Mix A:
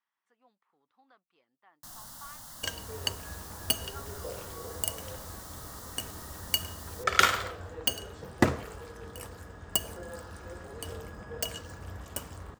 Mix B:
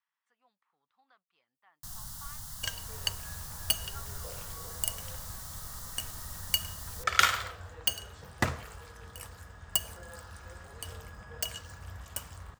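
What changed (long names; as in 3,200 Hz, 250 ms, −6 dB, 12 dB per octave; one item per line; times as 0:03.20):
first sound: add bass and treble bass +13 dB, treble +3 dB
master: add parametric band 330 Hz −12.5 dB 1.8 octaves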